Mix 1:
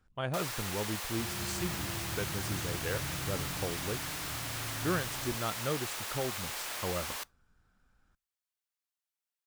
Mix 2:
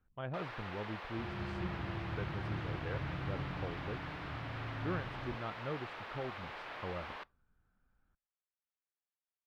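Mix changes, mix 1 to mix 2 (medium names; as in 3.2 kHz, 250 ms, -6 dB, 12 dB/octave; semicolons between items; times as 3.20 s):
speech -5.5 dB; first sound: add low-pass 3.3 kHz 6 dB/octave; master: add distance through air 360 m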